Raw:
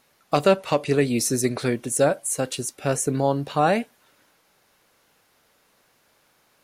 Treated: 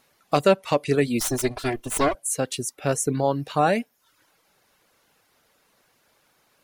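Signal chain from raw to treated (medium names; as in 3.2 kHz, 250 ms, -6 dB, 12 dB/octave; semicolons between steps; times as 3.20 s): 1.20–2.15 s: comb filter that takes the minimum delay 2.9 ms; reverb removal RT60 0.55 s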